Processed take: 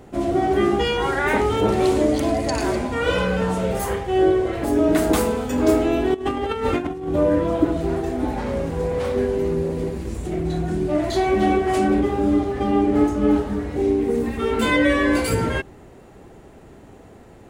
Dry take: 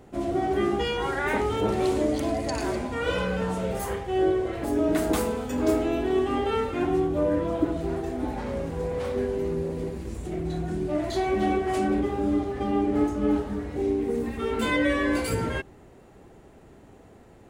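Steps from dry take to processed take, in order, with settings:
0:06.14–0:07.16: compressor whose output falls as the input rises −29 dBFS, ratio −0.5
level +6 dB

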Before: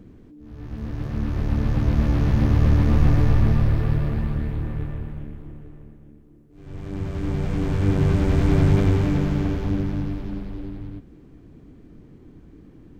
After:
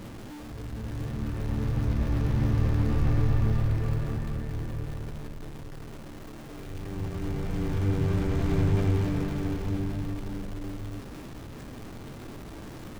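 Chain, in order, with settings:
converter with a step at zero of −29 dBFS
convolution reverb, pre-delay 3 ms, DRR 7 dB
level −8.5 dB

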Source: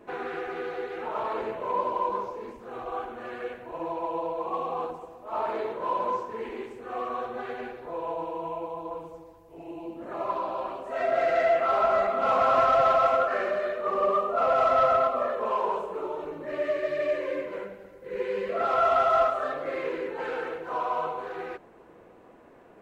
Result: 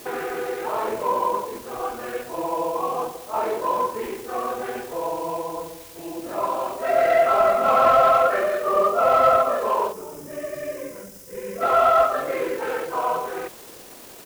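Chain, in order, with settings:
background noise white −50 dBFS
gain on a spectral selection 0:15.88–0:18.58, 280–4,800 Hz −9 dB
tempo change 1.6×
level +6 dB

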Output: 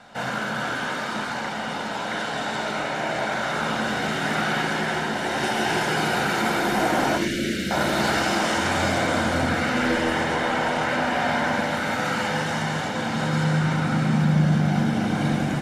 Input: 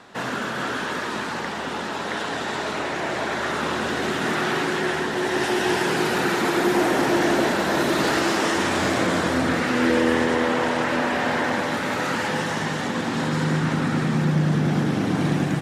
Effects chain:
0:07.17–0:07.71: Chebyshev band-stop filter 360–2,200 Hz, order 2
convolution reverb, pre-delay 4 ms, DRR 4.5 dB
level −4 dB

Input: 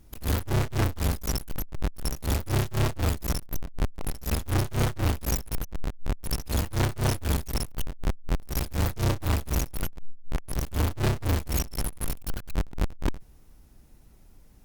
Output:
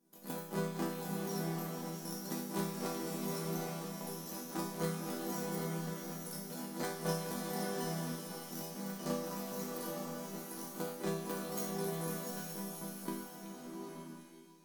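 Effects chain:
elliptic high-pass filter 170 Hz, stop band 40 dB
parametric band 2,600 Hz −8 dB 1.3 octaves
output level in coarse steps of 10 dB
resonators tuned to a chord E3 minor, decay 0.66 s
echo through a band-pass that steps 377 ms, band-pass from 3,000 Hz, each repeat 0.7 octaves, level −6 dB
slow-attack reverb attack 880 ms, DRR 0.5 dB
level +16 dB

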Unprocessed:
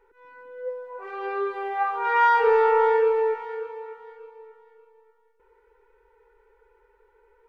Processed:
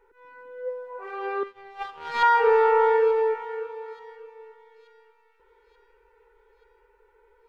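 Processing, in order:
0:01.43–0:02.23: power curve on the samples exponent 2
on a send: delay with a high-pass on its return 882 ms, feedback 56%, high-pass 2,800 Hz, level −20 dB

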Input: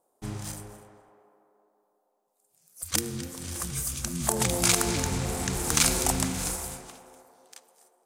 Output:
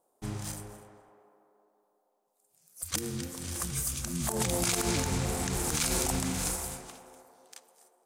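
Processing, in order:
brickwall limiter −15 dBFS, peak gain reduction 9.5 dB
level −1 dB

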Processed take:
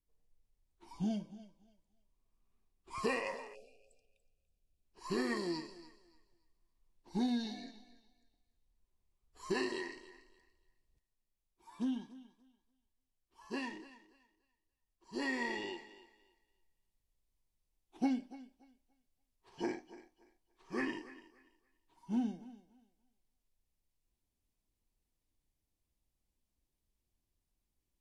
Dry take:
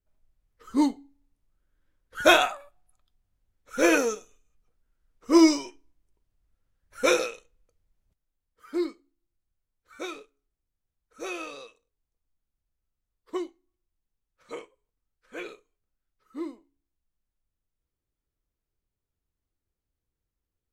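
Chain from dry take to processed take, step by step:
downward compressor 4 to 1, threshold −30 dBFS, peak gain reduction 15 dB
dynamic equaliser 2,600 Hz, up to +5 dB, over −52 dBFS, Q 2.8
speed change −26%
parametric band 1,400 Hz −9.5 dB 0.6 octaves
speech leveller 0.5 s
on a send: feedback echo with a high-pass in the loop 288 ms, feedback 25%, high-pass 240 Hz, level −16 dB
on the sum: time-frequency box erased 0:03.55–0:04.85, 790–2,300 Hz

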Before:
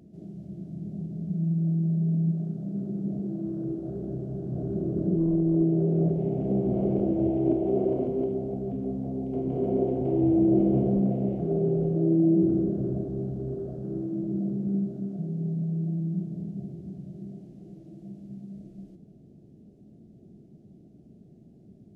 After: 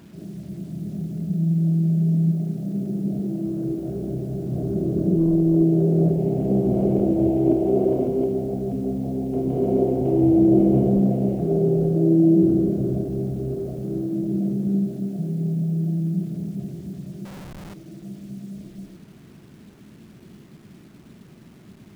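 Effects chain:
bit reduction 10 bits
0:17.25–0:17.74: comparator with hysteresis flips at −45.5 dBFS
level +5.5 dB

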